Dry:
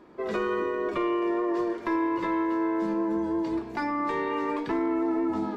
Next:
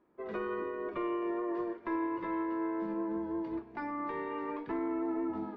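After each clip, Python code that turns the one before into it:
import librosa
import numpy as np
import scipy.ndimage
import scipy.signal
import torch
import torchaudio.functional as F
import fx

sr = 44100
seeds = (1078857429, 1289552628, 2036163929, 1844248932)

y = scipy.signal.sosfilt(scipy.signal.butter(2, 2500.0, 'lowpass', fs=sr, output='sos'), x)
y = fx.upward_expand(y, sr, threshold_db=-47.0, expansion=1.5)
y = y * 10.0 ** (-6.5 / 20.0)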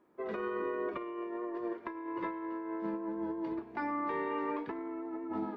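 y = fx.low_shelf(x, sr, hz=91.0, db=-10.0)
y = fx.over_compress(y, sr, threshold_db=-37.0, ratio=-0.5)
y = y * 10.0 ** (1.0 / 20.0)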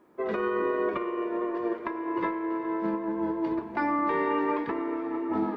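y = fx.echo_diffused(x, sr, ms=457, feedback_pct=48, wet_db=-12)
y = y * 10.0 ** (8.0 / 20.0)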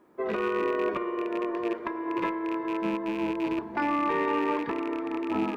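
y = fx.rattle_buzz(x, sr, strikes_db=-37.0, level_db=-29.0)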